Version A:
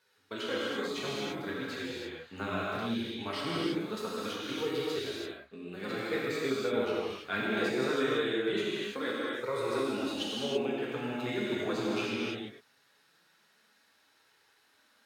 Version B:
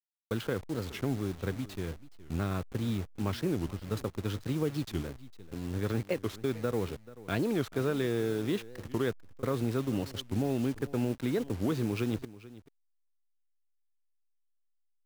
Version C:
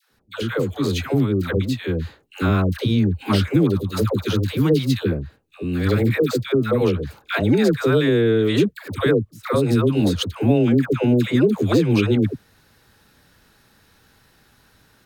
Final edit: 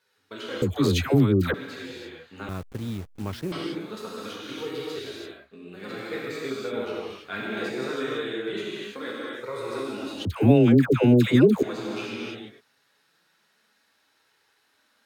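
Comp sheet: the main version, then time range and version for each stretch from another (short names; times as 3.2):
A
0.62–1.54 from C
2.49–3.52 from B
10.25–11.63 from C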